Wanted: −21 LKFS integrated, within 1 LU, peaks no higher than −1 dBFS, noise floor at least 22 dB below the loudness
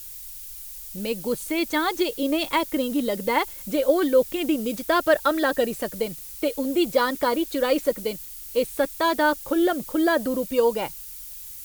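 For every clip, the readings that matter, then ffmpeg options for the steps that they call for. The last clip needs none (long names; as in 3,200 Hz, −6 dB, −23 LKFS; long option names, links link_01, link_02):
background noise floor −39 dBFS; target noise floor −46 dBFS; integrated loudness −24.0 LKFS; sample peak −6.5 dBFS; target loudness −21.0 LKFS
→ -af "afftdn=noise_reduction=7:noise_floor=-39"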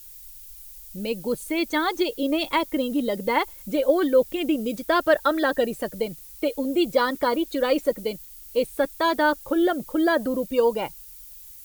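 background noise floor −44 dBFS; target noise floor −46 dBFS
→ -af "afftdn=noise_reduction=6:noise_floor=-44"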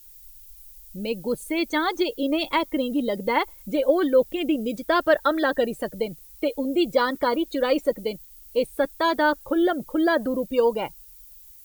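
background noise floor −48 dBFS; integrated loudness −24.0 LKFS; sample peak −7.0 dBFS; target loudness −21.0 LKFS
→ -af "volume=3dB"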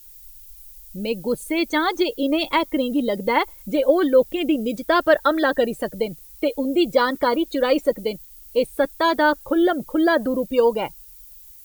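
integrated loudness −21.0 LKFS; sample peak −4.0 dBFS; background noise floor −45 dBFS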